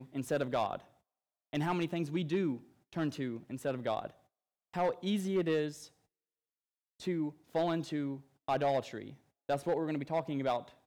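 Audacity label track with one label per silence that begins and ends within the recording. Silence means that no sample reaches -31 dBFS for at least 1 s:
5.680000	7.070000	silence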